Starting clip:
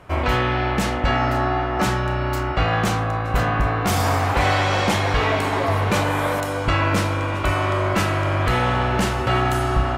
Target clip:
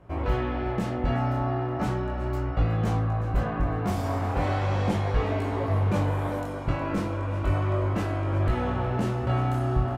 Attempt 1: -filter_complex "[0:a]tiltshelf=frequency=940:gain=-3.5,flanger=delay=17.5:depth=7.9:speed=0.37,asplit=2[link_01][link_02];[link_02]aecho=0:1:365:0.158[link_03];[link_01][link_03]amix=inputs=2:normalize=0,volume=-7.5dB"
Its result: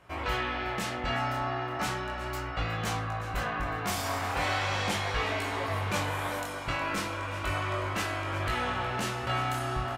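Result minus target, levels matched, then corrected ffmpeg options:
1,000 Hz band +4.0 dB
-filter_complex "[0:a]tiltshelf=frequency=940:gain=7,flanger=delay=17.5:depth=7.9:speed=0.37,asplit=2[link_01][link_02];[link_02]aecho=0:1:365:0.158[link_03];[link_01][link_03]amix=inputs=2:normalize=0,volume=-7.5dB"

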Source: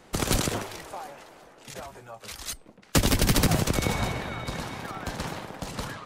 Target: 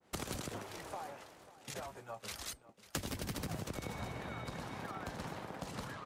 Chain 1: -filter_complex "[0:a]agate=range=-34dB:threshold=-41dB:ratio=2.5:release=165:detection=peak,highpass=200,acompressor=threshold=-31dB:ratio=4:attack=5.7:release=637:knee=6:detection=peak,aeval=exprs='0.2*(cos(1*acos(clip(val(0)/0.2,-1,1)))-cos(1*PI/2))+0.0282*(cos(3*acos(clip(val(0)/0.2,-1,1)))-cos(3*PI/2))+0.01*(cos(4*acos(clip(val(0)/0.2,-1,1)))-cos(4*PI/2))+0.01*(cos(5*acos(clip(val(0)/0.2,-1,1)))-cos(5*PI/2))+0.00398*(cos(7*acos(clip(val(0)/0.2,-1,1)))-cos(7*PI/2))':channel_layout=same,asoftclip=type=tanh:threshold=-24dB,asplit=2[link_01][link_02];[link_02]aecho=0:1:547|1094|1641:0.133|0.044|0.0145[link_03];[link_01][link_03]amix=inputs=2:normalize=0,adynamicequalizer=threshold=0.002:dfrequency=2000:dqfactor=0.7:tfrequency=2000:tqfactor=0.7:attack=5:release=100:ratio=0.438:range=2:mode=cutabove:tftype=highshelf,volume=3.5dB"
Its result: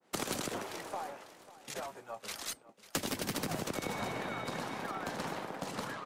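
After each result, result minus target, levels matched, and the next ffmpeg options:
downward compressor: peak gain reduction −6.5 dB; 125 Hz band −6.0 dB
-filter_complex "[0:a]agate=range=-34dB:threshold=-41dB:ratio=2.5:release=165:detection=peak,highpass=200,acompressor=threshold=-39dB:ratio=4:attack=5.7:release=637:knee=6:detection=peak,aeval=exprs='0.2*(cos(1*acos(clip(val(0)/0.2,-1,1)))-cos(1*PI/2))+0.0282*(cos(3*acos(clip(val(0)/0.2,-1,1)))-cos(3*PI/2))+0.01*(cos(4*acos(clip(val(0)/0.2,-1,1)))-cos(4*PI/2))+0.01*(cos(5*acos(clip(val(0)/0.2,-1,1)))-cos(5*PI/2))+0.00398*(cos(7*acos(clip(val(0)/0.2,-1,1)))-cos(7*PI/2))':channel_layout=same,asoftclip=type=tanh:threshold=-24dB,asplit=2[link_01][link_02];[link_02]aecho=0:1:547|1094|1641:0.133|0.044|0.0145[link_03];[link_01][link_03]amix=inputs=2:normalize=0,adynamicequalizer=threshold=0.002:dfrequency=2000:dqfactor=0.7:tfrequency=2000:tqfactor=0.7:attack=5:release=100:ratio=0.438:range=2:mode=cutabove:tftype=highshelf,volume=3.5dB"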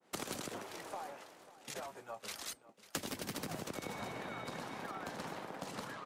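125 Hz band −6.5 dB
-filter_complex "[0:a]agate=range=-34dB:threshold=-41dB:ratio=2.5:release=165:detection=peak,highpass=59,acompressor=threshold=-39dB:ratio=4:attack=5.7:release=637:knee=6:detection=peak,aeval=exprs='0.2*(cos(1*acos(clip(val(0)/0.2,-1,1)))-cos(1*PI/2))+0.0282*(cos(3*acos(clip(val(0)/0.2,-1,1)))-cos(3*PI/2))+0.01*(cos(4*acos(clip(val(0)/0.2,-1,1)))-cos(4*PI/2))+0.01*(cos(5*acos(clip(val(0)/0.2,-1,1)))-cos(5*PI/2))+0.00398*(cos(7*acos(clip(val(0)/0.2,-1,1)))-cos(7*PI/2))':channel_layout=same,asoftclip=type=tanh:threshold=-24dB,asplit=2[link_01][link_02];[link_02]aecho=0:1:547|1094|1641:0.133|0.044|0.0145[link_03];[link_01][link_03]amix=inputs=2:normalize=0,adynamicequalizer=threshold=0.002:dfrequency=2000:dqfactor=0.7:tfrequency=2000:tqfactor=0.7:attack=5:release=100:ratio=0.438:range=2:mode=cutabove:tftype=highshelf,volume=3.5dB"

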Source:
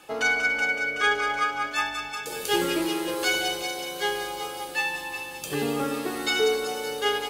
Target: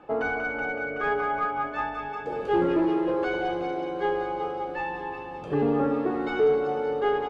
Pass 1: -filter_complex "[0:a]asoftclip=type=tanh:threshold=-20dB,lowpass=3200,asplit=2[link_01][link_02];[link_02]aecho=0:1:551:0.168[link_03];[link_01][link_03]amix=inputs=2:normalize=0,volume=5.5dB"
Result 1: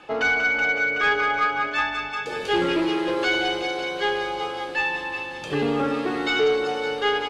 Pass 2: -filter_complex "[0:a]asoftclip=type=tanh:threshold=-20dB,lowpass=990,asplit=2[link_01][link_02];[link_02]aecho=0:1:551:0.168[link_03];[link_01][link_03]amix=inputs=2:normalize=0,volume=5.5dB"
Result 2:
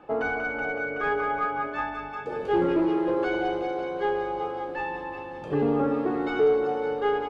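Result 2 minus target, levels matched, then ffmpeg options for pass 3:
echo 424 ms early
-filter_complex "[0:a]asoftclip=type=tanh:threshold=-20dB,lowpass=990,asplit=2[link_01][link_02];[link_02]aecho=0:1:975:0.168[link_03];[link_01][link_03]amix=inputs=2:normalize=0,volume=5.5dB"

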